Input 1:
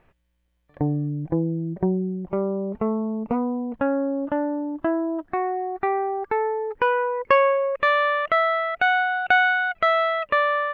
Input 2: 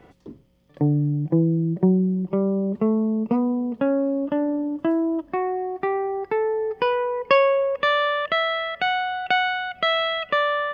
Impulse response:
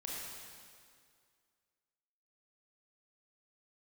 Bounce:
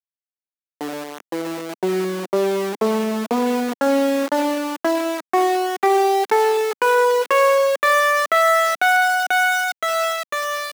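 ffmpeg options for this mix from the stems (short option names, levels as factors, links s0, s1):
-filter_complex "[0:a]alimiter=limit=0.188:level=0:latency=1:release=155,volume=0.891,asplit=2[s0][s1];[s1]volume=0.282[s2];[1:a]acompressor=threshold=0.0794:ratio=6,bandpass=f=330:t=q:w=4:csg=0,adelay=1.5,volume=0.562,asplit=2[s3][s4];[s4]volume=0.106[s5];[2:a]atrim=start_sample=2205[s6];[s2][s5]amix=inputs=2:normalize=0[s7];[s7][s6]afir=irnorm=-1:irlink=0[s8];[s0][s3][s8]amix=inputs=3:normalize=0,dynaudnorm=f=210:g=17:m=2.24,aeval=exprs='val(0)*gte(abs(val(0)),0.0794)':c=same,highpass=f=250:w=0.5412,highpass=f=250:w=1.3066"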